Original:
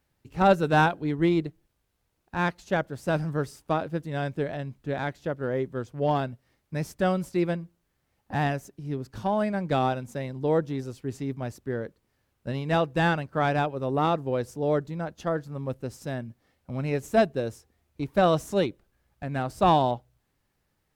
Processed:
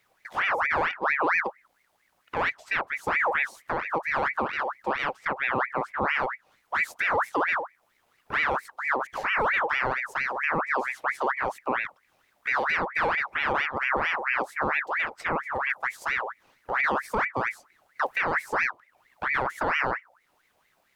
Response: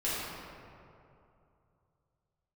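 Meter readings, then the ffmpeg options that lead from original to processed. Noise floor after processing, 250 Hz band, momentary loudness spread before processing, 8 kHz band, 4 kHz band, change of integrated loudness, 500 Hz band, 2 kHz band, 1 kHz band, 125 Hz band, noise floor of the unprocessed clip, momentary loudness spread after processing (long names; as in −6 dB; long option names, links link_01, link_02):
−69 dBFS, −11.0 dB, 12 LU, can't be measured, −0.5 dB, +0.5 dB, −5.5 dB, +10.0 dB, +1.5 dB, −15.5 dB, −75 dBFS, 6 LU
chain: -filter_complex "[0:a]acrossover=split=330[link_01][link_02];[link_02]acompressor=threshold=-48dB:ratio=2[link_03];[link_01][link_03]amix=inputs=2:normalize=0,alimiter=limit=-24dB:level=0:latency=1:release=13,aeval=exprs='val(0)*sin(2*PI*1400*n/s+1400*0.55/4.4*sin(2*PI*4.4*n/s))':channel_layout=same,volume=9dB"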